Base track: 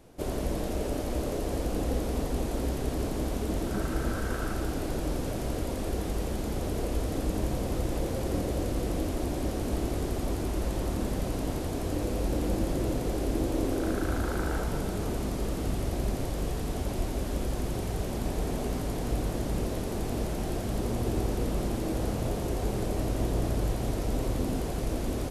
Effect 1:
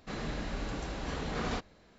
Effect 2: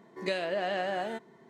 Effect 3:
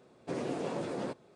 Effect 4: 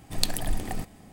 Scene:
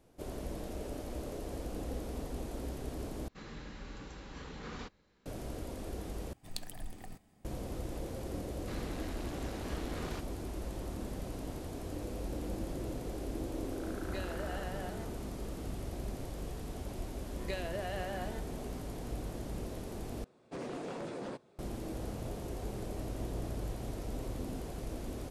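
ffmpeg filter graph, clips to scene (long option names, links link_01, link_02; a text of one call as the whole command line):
ffmpeg -i bed.wav -i cue0.wav -i cue1.wav -i cue2.wav -i cue3.wav -filter_complex "[1:a]asplit=2[link_01][link_02];[2:a]asplit=2[link_03][link_04];[0:a]volume=-10dB[link_05];[link_01]equalizer=frequency=670:width=7:gain=-11.5[link_06];[link_02]asoftclip=type=tanh:threshold=-39.5dB[link_07];[link_03]bandreject=frequency=2300:width=12[link_08];[3:a]aeval=exprs='0.0335*(abs(mod(val(0)/0.0335+3,4)-2)-1)':channel_layout=same[link_09];[link_05]asplit=4[link_10][link_11][link_12][link_13];[link_10]atrim=end=3.284[link_14];[link_06]atrim=end=1.98,asetpts=PTS-STARTPTS,volume=-9.5dB[link_15];[link_11]atrim=start=5.256:end=6.334[link_16];[4:a]atrim=end=1.12,asetpts=PTS-STARTPTS,volume=-16dB[link_17];[link_12]atrim=start=7.446:end=20.244[link_18];[link_09]atrim=end=1.35,asetpts=PTS-STARTPTS,volume=-4.5dB[link_19];[link_13]atrim=start=21.586[link_20];[link_07]atrim=end=1.98,asetpts=PTS-STARTPTS,volume=-1.5dB,afade=type=in:duration=0.004:curve=hsin,afade=type=out:start_time=1.976:duration=0.004:curve=hsin,adelay=8600[link_21];[link_08]atrim=end=1.49,asetpts=PTS-STARTPTS,volume=-12dB,afade=type=in:duration=0.004:curve=hsin,afade=type=out:start_time=1.486:duration=0.004:curve=hsin,adelay=13870[link_22];[link_04]atrim=end=1.49,asetpts=PTS-STARTPTS,volume=-8.5dB,afade=type=in:duration=0.004:curve=hsin,afade=type=out:start_time=1.486:duration=0.004:curve=hsin,adelay=17220[link_23];[link_14][link_15]acrossfade=duration=0.004:curve1=hsin:curve2=hsin[link_24];[link_24][link_16]acrossfade=duration=0.004:curve1=hsin:curve2=hsin[link_25];[link_25][link_17]acrossfade=duration=0.004:curve1=hsin:curve2=hsin[link_26];[link_26][link_18]acrossfade=duration=0.004:curve1=hsin:curve2=hsin[link_27];[link_27][link_19]acrossfade=duration=0.004:curve1=hsin:curve2=hsin[link_28];[link_28][link_20]acrossfade=duration=0.004:curve1=hsin:curve2=hsin[link_29];[link_29][link_21][link_22][link_23]amix=inputs=4:normalize=0" out.wav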